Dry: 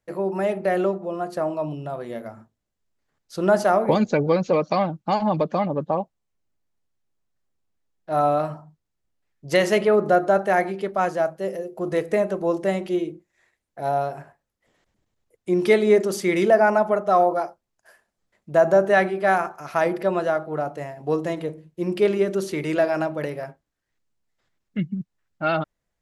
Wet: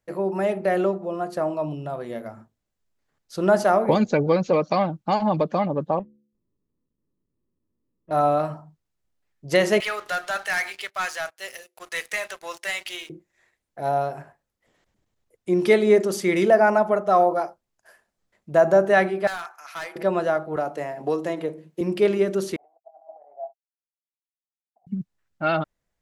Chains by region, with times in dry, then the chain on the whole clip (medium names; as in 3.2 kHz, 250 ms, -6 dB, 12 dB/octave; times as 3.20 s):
5.99–8.11 s: CVSD coder 16 kbps + boxcar filter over 59 samples + de-hum 71.48 Hz, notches 7
9.80–13.10 s: Chebyshev high-pass 2.3 kHz + waveshaping leveller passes 3
19.27–19.96 s: high-pass 1.4 kHz + hard clipper -28 dBFS
20.56–21.81 s: high-pass 210 Hz + three bands compressed up and down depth 70%
22.56–24.87 s: compressor with a negative ratio -30 dBFS, ratio -0.5 + hysteresis with a dead band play -35 dBFS + Butterworth band-pass 730 Hz, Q 6.4
whole clip: none